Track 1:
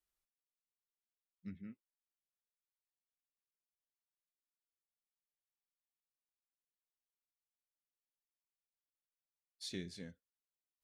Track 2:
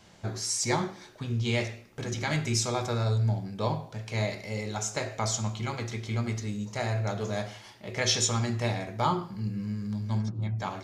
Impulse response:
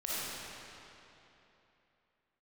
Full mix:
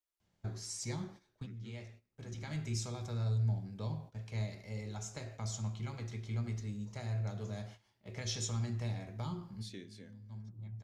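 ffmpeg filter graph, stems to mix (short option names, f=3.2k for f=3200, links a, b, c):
-filter_complex "[0:a]lowshelf=f=190:t=q:w=1.5:g=-6.5,bandreject=f=124.1:t=h:w=4,bandreject=f=248.2:t=h:w=4,bandreject=f=372.3:t=h:w=4,bandreject=f=496.4:t=h:w=4,bandreject=f=620.5:t=h:w=4,bandreject=f=744.6:t=h:w=4,bandreject=f=868.7:t=h:w=4,bandreject=f=992.8:t=h:w=4,bandreject=f=1.1169k:t=h:w=4,bandreject=f=1.241k:t=h:w=4,bandreject=f=1.3651k:t=h:w=4,bandreject=f=1.4892k:t=h:w=4,bandreject=f=1.6133k:t=h:w=4,bandreject=f=1.7374k:t=h:w=4,bandreject=f=1.8615k:t=h:w=4,bandreject=f=1.9856k:t=h:w=4,bandreject=f=2.1097k:t=h:w=4,bandreject=f=2.2338k:t=h:w=4,bandreject=f=2.3579k:t=h:w=4,bandreject=f=2.482k:t=h:w=4,bandreject=f=2.6061k:t=h:w=4,bandreject=f=2.7302k:t=h:w=4,bandreject=f=2.8543k:t=h:w=4,bandreject=f=2.9784k:t=h:w=4,bandreject=f=3.1025k:t=h:w=4,bandreject=f=3.2266k:t=h:w=4,bandreject=f=3.3507k:t=h:w=4,bandreject=f=3.4748k:t=h:w=4,bandreject=f=3.5989k:t=h:w=4,volume=-4.5dB,asplit=2[a][b];[1:a]agate=range=-13dB:threshold=-41dB:ratio=16:detection=peak,lowshelf=f=170:g=10.5,adelay=200,volume=-13dB[c];[b]apad=whole_len=486587[d];[c][d]sidechaincompress=threshold=-58dB:ratio=10:attack=5.3:release=1470[e];[a][e]amix=inputs=2:normalize=0,acrossover=split=300|3000[f][g][h];[g]acompressor=threshold=-46dB:ratio=6[i];[f][i][h]amix=inputs=3:normalize=0"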